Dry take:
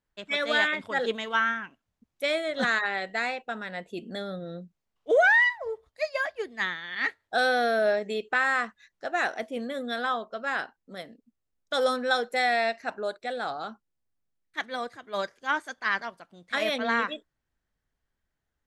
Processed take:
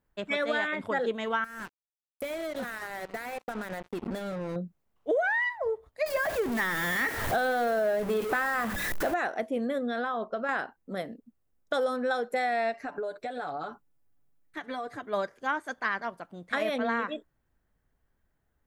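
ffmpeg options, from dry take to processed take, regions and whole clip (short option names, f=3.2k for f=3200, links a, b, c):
-filter_complex "[0:a]asettb=1/sr,asplit=3[a][b][c];[a]atrim=end=1.444[d];[b]atrim=start=1.44:end=4.56,asetpts=PTS-STARTPTS,afade=t=in:d=0.004:c=qsin,afade=t=out:st=3.116:d=0.004:c=qsin,aecho=1:1:89:0.0794,atrim=end_sample=137592,acompressor=threshold=-37dB:ratio=16:attack=3.2:release=140:knee=1:detection=peak,acrusher=bits=6:mix=0:aa=0.5[e];[c]atrim=start=4.556[f];[d][e]acrossfade=d=0.004:c1=hsin:c2=qsin[g];[g][f]acrossfade=d=0.004:c1=qsin:c2=hsin,asettb=1/sr,asplit=3[h][i][j];[h]atrim=end=6.064[k];[i]atrim=start=6.06:end=9.14,asetpts=PTS-STARTPTS,afade=t=in:d=0.004:c=qsin,afade=t=out:st=3.076:d=0.004:c=qsin,aeval=exprs='val(0)+0.5*0.0422*sgn(val(0))':c=same,bandreject=f=98.74:t=h:w=4,bandreject=f=197.48:t=h:w=4,bandreject=f=296.22:t=h:w=4,bandreject=f=394.96:t=h:w=4,bandreject=f=493.7:t=h:w=4,bandreject=f=592.44:t=h:w=4[l];[j]atrim=start=9.136[m];[k][l]acrossfade=d=0.004:c1=hsin:c2=qsin[n];[n][m]acrossfade=d=0.004:c1=qsin:c2=hsin,asettb=1/sr,asplit=3[o][p][q];[o]atrim=end=9.784[r];[p]atrim=start=9.78:end=10.49,asetpts=PTS-STARTPTS,afade=t=in:d=0.004:c=qsin,afade=t=out:st=0.706:d=0.004:c=qsin,lowpass=6.2k,acompressor=threshold=-32dB:ratio=4:attack=3.2:release=140:knee=1:detection=peak[s];[q]atrim=start=10.486[t];[r][s]acrossfade=d=0.004:c1=hsin:c2=qsin[u];[u][t]acrossfade=d=0.004:c1=qsin:c2=hsin,asettb=1/sr,asplit=3[v][w][x];[v]atrim=end=12.734[y];[w]atrim=start=12.73:end=15.02,asetpts=PTS-STARTPTS,afade=t=in:d=0.004:c=qsin,afade=t=out:st=2.286:d=0.004:c=qsin,aecho=1:1:6.9:0.74,atrim=end_sample=100989,acompressor=threshold=-37dB:ratio=12:attack=3.2:release=140:knee=1:detection=peak[z];[x]atrim=start=15.016[aa];[y][z]acrossfade=d=0.004:c1=hsin:c2=qsin[ab];[ab][aa]acrossfade=d=0.004:c1=qsin:c2=hsin,equalizer=f=4.7k:w=0.46:g=-10.5,acompressor=threshold=-35dB:ratio=4,volume=8dB"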